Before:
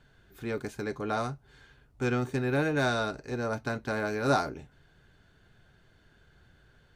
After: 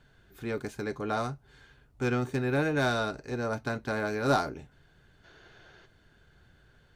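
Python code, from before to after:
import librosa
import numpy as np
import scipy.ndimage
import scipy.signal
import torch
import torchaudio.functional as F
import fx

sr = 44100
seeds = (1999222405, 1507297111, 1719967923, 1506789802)

y = fx.tracing_dist(x, sr, depth_ms=0.024)
y = fx.spec_box(y, sr, start_s=5.24, length_s=0.62, low_hz=290.0, high_hz=7000.0, gain_db=10)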